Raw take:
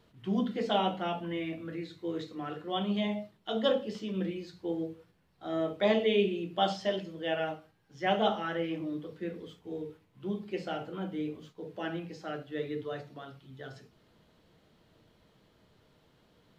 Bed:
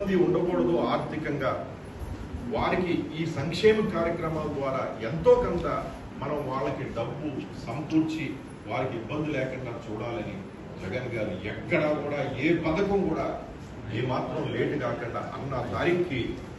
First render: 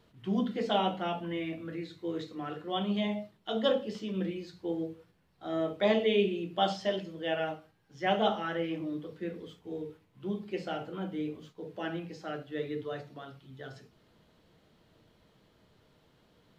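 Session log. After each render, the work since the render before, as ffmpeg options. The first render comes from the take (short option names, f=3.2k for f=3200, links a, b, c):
-af anull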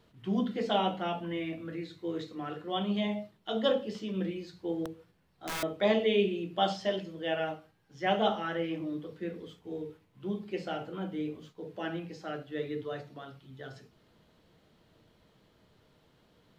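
-filter_complex "[0:a]asettb=1/sr,asplit=3[a][b][c];[a]atrim=end=4.854[d];[b]atrim=start=4.85:end=5.63,asetpts=PTS-STARTPTS,afade=t=in:d=0.004:c=qsin,afade=t=out:st=0.776:d=0.004:c=qsin,aeval=exprs='(mod(33.5*val(0)+1,2)-1)/33.5':c=same[e];[c]atrim=start=5.626[f];[d][e]acrossfade=d=0.004:c1=hsin:c2=qsin[g];[g][f]acrossfade=d=0.004:c1=qsin:c2=hsin"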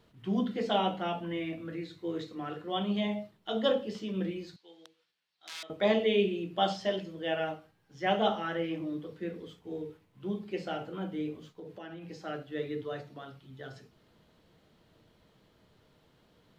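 -filter_complex "[0:a]asettb=1/sr,asplit=3[a][b][c];[a]atrim=end=4.564[d];[b]atrim=start=4.56:end=5.7,asetpts=PTS-STARTPTS,afade=t=in:d=0.004:c=qsin,afade=t=out:st=1.136:d=0.004:c=qsin,bandpass=f=4k:t=q:w=1.3[e];[c]atrim=start=5.696[f];[d][e]acrossfade=d=0.004:c1=hsin:c2=qsin[g];[g][f]acrossfade=d=0.004:c1=qsin:c2=hsin,asettb=1/sr,asplit=3[h][i][j];[h]atrim=end=11.494[k];[i]atrim=start=11.49:end=12.11,asetpts=PTS-STARTPTS,afade=t=in:d=0.004:c=qsin,afade=t=out:st=0.616:d=0.004:c=qsin,acompressor=threshold=-40dB:ratio=12:attack=3.2:release=140:knee=1:detection=peak[l];[j]atrim=start=12.106[m];[k][l]acrossfade=d=0.004:c1=hsin:c2=qsin[n];[n][m]acrossfade=d=0.004:c1=qsin:c2=hsin"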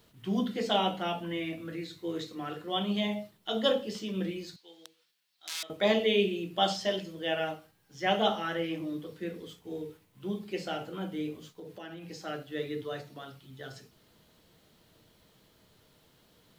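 -af "crystalizer=i=2.5:c=0"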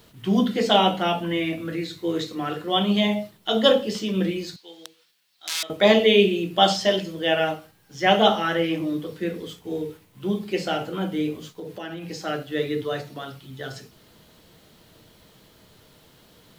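-af "volume=9.5dB"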